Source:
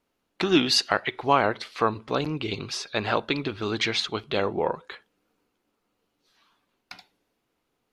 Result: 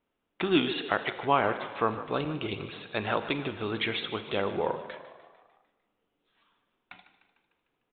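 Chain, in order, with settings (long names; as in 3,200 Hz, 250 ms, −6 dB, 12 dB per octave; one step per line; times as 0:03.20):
echo with shifted repeats 150 ms, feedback 57%, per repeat +45 Hz, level −14.5 dB
downsampling to 8,000 Hz
four-comb reverb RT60 1.3 s, combs from 33 ms, DRR 12 dB
level −4 dB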